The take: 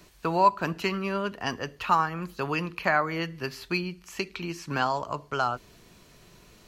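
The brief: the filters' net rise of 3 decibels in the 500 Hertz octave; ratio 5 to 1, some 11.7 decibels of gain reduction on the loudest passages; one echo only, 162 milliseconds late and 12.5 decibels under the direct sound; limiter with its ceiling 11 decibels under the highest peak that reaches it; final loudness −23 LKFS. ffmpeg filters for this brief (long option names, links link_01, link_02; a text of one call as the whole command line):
ffmpeg -i in.wav -af "equalizer=frequency=500:width_type=o:gain=4,acompressor=threshold=-27dB:ratio=5,alimiter=level_in=0.5dB:limit=-24dB:level=0:latency=1,volume=-0.5dB,aecho=1:1:162:0.237,volume=12.5dB" out.wav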